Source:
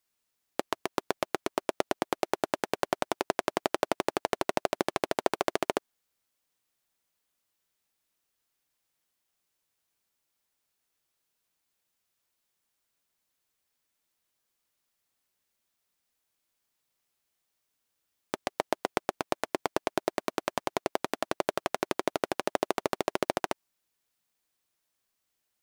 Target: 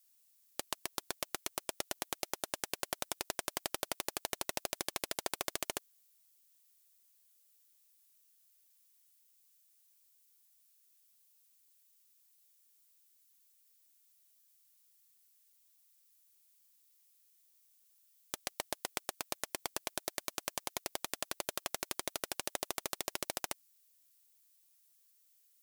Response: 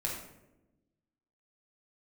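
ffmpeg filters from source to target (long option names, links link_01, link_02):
-af "aderivative,asoftclip=type=tanh:threshold=-22dB,volume=8.5dB"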